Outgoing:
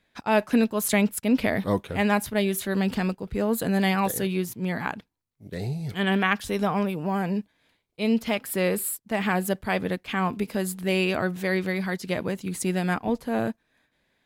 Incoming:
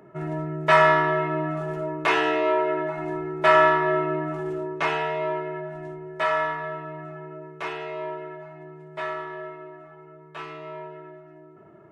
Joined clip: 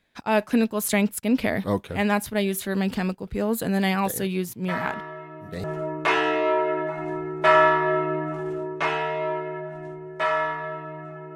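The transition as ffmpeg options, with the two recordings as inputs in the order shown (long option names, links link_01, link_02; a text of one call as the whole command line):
ffmpeg -i cue0.wav -i cue1.wav -filter_complex "[1:a]asplit=2[link_01][link_02];[0:a]apad=whole_dur=11.35,atrim=end=11.35,atrim=end=5.642[link_03];[link_02]atrim=start=1.638:end=7.35[link_04];[link_01]atrim=start=0.66:end=1.64,asetpts=PTS-STARTPTS,volume=-14.5dB,afade=type=in:duration=0.004:curve=hsin,afade=type=out:start_time=0.976:duration=0.004:curve=hsin,adelay=4660[link_05];[link_03][link_04]acrossfade=duration=0.004:curve1=hsin:curve2=hsin[link_06];[link_06][link_05]amix=inputs=2:normalize=0" out.wav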